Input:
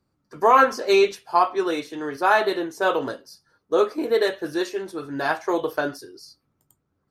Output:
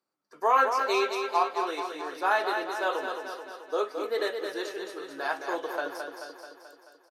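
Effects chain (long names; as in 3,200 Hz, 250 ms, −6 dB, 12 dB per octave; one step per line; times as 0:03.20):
high-pass filter 460 Hz 12 dB per octave
on a send: repeating echo 217 ms, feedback 59%, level −6 dB
on the sum: level −6.5 dB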